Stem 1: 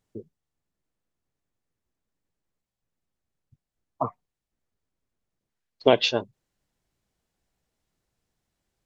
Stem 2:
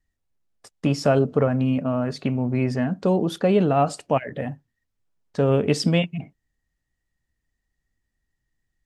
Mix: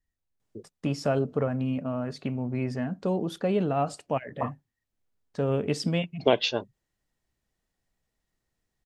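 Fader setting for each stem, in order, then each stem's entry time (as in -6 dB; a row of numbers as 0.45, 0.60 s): -3.5, -7.0 dB; 0.40, 0.00 s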